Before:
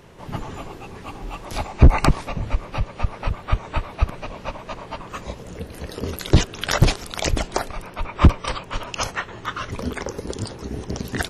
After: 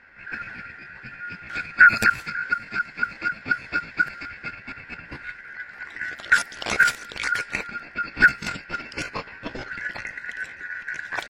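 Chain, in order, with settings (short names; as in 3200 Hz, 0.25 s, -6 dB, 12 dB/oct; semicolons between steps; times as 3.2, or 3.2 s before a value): band-swap scrambler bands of 1000 Hz; low-pass opened by the level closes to 1700 Hz, open at -12 dBFS; pitch shift +5 st; gain -3.5 dB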